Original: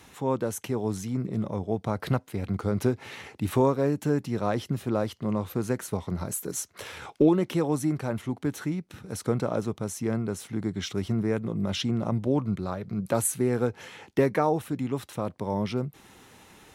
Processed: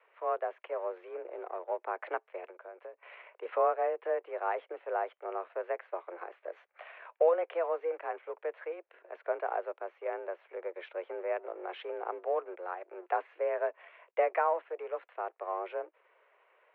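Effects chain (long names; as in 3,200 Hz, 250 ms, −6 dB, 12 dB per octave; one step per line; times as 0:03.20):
mu-law and A-law mismatch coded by A
0:02.47–0:03.03: downward compressor 8 to 1, threshold −36 dBFS, peak gain reduction 17 dB
single-sideband voice off tune +170 Hz 290–2,400 Hz
level −3.5 dB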